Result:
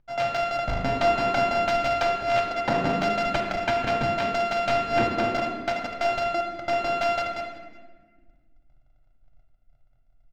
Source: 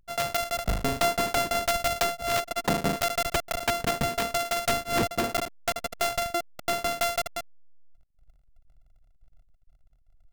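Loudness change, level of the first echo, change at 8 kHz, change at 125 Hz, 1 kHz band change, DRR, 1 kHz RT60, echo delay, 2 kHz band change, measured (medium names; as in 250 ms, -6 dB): +2.5 dB, -22.5 dB, -13.5 dB, +1.5 dB, +4.0 dB, 0.0 dB, 1.3 s, 367 ms, +2.0 dB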